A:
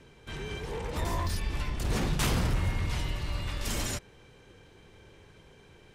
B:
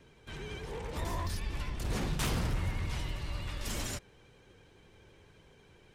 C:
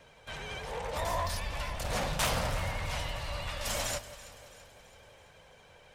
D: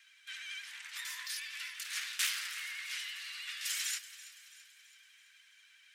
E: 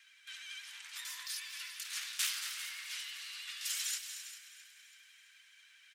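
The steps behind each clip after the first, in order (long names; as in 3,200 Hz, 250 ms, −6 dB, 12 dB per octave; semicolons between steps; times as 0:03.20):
pitch vibrato 12 Hz 49 cents; level −4.5 dB
low shelf with overshoot 460 Hz −7 dB, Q 3; delay that swaps between a low-pass and a high-pass 166 ms, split 1,200 Hz, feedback 71%, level −13 dB; level +5 dB
Butterworth high-pass 1,600 Hz 36 dB per octave
dynamic equaliser 1,900 Hz, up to −6 dB, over −55 dBFS, Q 1.3; on a send: multi-tap delay 230/400 ms −10.5/−13.5 dB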